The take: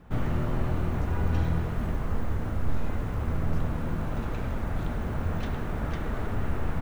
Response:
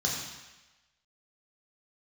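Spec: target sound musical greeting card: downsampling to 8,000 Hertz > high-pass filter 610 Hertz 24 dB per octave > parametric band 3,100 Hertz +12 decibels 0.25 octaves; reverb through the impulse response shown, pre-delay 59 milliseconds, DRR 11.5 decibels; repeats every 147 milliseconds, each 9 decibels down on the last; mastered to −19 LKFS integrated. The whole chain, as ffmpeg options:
-filter_complex "[0:a]aecho=1:1:147|294|441|588:0.355|0.124|0.0435|0.0152,asplit=2[link_01][link_02];[1:a]atrim=start_sample=2205,adelay=59[link_03];[link_02][link_03]afir=irnorm=-1:irlink=0,volume=-19dB[link_04];[link_01][link_04]amix=inputs=2:normalize=0,aresample=8000,aresample=44100,highpass=frequency=610:width=0.5412,highpass=frequency=610:width=1.3066,equalizer=frequency=3100:width_type=o:width=0.25:gain=12,volume=21dB"

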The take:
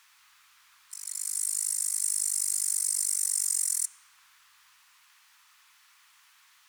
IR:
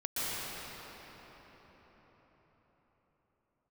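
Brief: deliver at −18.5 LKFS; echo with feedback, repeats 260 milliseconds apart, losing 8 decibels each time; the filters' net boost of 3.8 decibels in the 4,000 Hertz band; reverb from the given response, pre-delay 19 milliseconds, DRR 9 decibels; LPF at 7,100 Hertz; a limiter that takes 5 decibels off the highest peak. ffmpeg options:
-filter_complex "[0:a]lowpass=7100,equalizer=frequency=4000:width_type=o:gain=7,alimiter=limit=-22.5dB:level=0:latency=1,aecho=1:1:260|520|780|1040|1300:0.398|0.159|0.0637|0.0255|0.0102,asplit=2[link_01][link_02];[1:a]atrim=start_sample=2205,adelay=19[link_03];[link_02][link_03]afir=irnorm=-1:irlink=0,volume=-17dB[link_04];[link_01][link_04]amix=inputs=2:normalize=0,volume=13.5dB"

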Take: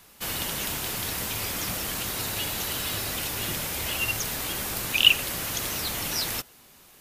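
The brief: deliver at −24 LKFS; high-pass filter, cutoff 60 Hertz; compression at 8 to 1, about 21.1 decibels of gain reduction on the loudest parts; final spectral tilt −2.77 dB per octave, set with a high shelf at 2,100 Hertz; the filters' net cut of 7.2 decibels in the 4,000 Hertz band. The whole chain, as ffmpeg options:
ffmpeg -i in.wav -af "highpass=60,highshelf=frequency=2100:gain=-6,equalizer=frequency=4000:width_type=o:gain=-5,acompressor=threshold=-40dB:ratio=8,volume=18dB" out.wav

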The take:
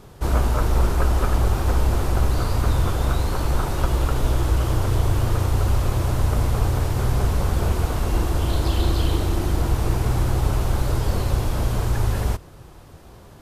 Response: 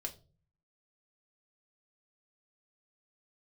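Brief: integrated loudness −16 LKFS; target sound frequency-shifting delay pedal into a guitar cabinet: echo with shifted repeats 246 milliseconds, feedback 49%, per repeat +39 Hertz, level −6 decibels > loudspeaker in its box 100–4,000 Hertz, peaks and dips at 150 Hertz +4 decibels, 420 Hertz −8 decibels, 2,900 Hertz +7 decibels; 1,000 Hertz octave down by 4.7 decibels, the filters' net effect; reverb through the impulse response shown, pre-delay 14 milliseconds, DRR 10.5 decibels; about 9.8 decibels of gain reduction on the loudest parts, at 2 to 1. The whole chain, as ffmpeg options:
-filter_complex "[0:a]equalizer=frequency=1000:width_type=o:gain=-6,acompressor=threshold=-33dB:ratio=2,asplit=2[link_01][link_02];[1:a]atrim=start_sample=2205,adelay=14[link_03];[link_02][link_03]afir=irnorm=-1:irlink=0,volume=-9dB[link_04];[link_01][link_04]amix=inputs=2:normalize=0,asplit=7[link_05][link_06][link_07][link_08][link_09][link_10][link_11];[link_06]adelay=246,afreqshift=39,volume=-6dB[link_12];[link_07]adelay=492,afreqshift=78,volume=-12.2dB[link_13];[link_08]adelay=738,afreqshift=117,volume=-18.4dB[link_14];[link_09]adelay=984,afreqshift=156,volume=-24.6dB[link_15];[link_10]adelay=1230,afreqshift=195,volume=-30.8dB[link_16];[link_11]adelay=1476,afreqshift=234,volume=-37dB[link_17];[link_05][link_12][link_13][link_14][link_15][link_16][link_17]amix=inputs=7:normalize=0,highpass=100,equalizer=frequency=150:width_type=q:width=4:gain=4,equalizer=frequency=420:width_type=q:width=4:gain=-8,equalizer=frequency=2900:width_type=q:width=4:gain=7,lowpass=frequency=4000:width=0.5412,lowpass=frequency=4000:width=1.3066,volume=16dB"

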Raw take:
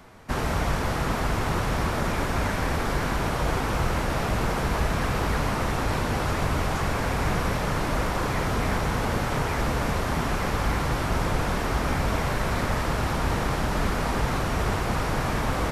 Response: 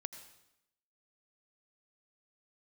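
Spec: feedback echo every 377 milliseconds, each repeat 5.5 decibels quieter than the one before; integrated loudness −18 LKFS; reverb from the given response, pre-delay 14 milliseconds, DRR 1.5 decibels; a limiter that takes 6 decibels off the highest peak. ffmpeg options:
-filter_complex "[0:a]alimiter=limit=-17.5dB:level=0:latency=1,aecho=1:1:377|754|1131|1508|1885|2262|2639:0.531|0.281|0.149|0.079|0.0419|0.0222|0.0118,asplit=2[link_01][link_02];[1:a]atrim=start_sample=2205,adelay=14[link_03];[link_02][link_03]afir=irnorm=-1:irlink=0,volume=1dB[link_04];[link_01][link_04]amix=inputs=2:normalize=0,volume=6dB"

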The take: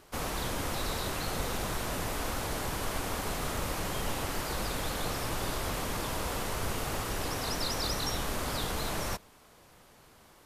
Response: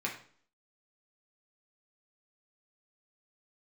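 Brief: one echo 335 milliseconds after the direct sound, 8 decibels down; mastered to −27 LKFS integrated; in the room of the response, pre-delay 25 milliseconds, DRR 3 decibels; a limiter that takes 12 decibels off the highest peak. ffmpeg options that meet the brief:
-filter_complex "[0:a]alimiter=level_in=7dB:limit=-24dB:level=0:latency=1,volume=-7dB,aecho=1:1:335:0.398,asplit=2[link_01][link_02];[1:a]atrim=start_sample=2205,adelay=25[link_03];[link_02][link_03]afir=irnorm=-1:irlink=0,volume=-7.5dB[link_04];[link_01][link_04]amix=inputs=2:normalize=0,volume=11.5dB"

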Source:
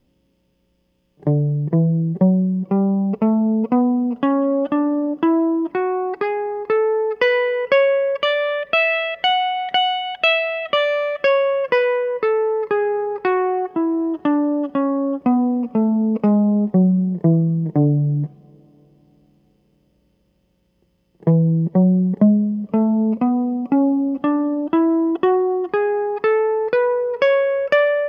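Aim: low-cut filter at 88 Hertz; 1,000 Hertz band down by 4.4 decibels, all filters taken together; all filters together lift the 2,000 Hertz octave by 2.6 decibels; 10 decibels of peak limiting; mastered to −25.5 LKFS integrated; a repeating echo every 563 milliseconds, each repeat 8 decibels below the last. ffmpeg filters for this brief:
ffmpeg -i in.wav -af "highpass=88,equalizer=frequency=1000:width_type=o:gain=-7.5,equalizer=frequency=2000:width_type=o:gain=5,alimiter=limit=-13.5dB:level=0:latency=1,aecho=1:1:563|1126|1689|2252|2815:0.398|0.159|0.0637|0.0255|0.0102,volume=-5.5dB" out.wav

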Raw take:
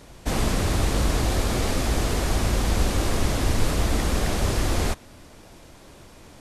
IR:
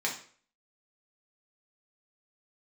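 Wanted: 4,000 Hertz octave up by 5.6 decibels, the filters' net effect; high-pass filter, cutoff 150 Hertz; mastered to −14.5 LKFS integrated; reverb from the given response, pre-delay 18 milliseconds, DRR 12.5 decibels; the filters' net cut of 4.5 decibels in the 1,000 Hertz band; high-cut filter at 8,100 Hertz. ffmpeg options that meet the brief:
-filter_complex "[0:a]highpass=150,lowpass=8100,equalizer=frequency=1000:width_type=o:gain=-6.5,equalizer=frequency=4000:width_type=o:gain=7.5,asplit=2[link_01][link_02];[1:a]atrim=start_sample=2205,adelay=18[link_03];[link_02][link_03]afir=irnorm=-1:irlink=0,volume=-19.5dB[link_04];[link_01][link_04]amix=inputs=2:normalize=0,volume=11.5dB"

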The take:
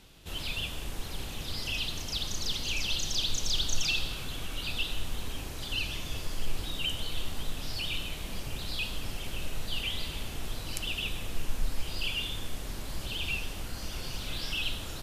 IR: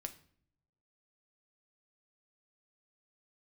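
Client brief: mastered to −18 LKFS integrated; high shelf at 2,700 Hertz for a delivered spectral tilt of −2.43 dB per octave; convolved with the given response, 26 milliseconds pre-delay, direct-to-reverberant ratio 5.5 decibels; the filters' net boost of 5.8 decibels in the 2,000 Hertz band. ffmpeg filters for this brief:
-filter_complex "[0:a]equalizer=frequency=2000:width_type=o:gain=6.5,highshelf=frequency=2700:gain=3.5,asplit=2[link_01][link_02];[1:a]atrim=start_sample=2205,adelay=26[link_03];[link_02][link_03]afir=irnorm=-1:irlink=0,volume=-2.5dB[link_04];[link_01][link_04]amix=inputs=2:normalize=0,volume=11dB"

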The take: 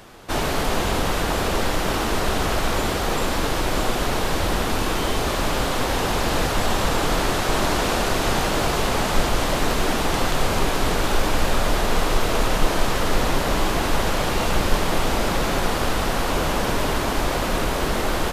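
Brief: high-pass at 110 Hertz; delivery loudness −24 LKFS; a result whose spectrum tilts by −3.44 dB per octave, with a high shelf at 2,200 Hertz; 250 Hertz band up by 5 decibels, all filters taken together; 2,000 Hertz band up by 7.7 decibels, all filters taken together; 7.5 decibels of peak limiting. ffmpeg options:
ffmpeg -i in.wav -af "highpass=110,equalizer=frequency=250:width_type=o:gain=6.5,equalizer=frequency=2000:width_type=o:gain=6,highshelf=frequency=2200:gain=7,volume=-4dB,alimiter=limit=-15.5dB:level=0:latency=1" out.wav

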